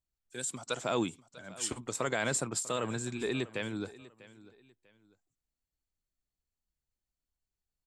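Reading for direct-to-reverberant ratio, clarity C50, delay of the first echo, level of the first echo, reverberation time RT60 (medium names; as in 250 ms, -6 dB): no reverb, no reverb, 645 ms, -19.0 dB, no reverb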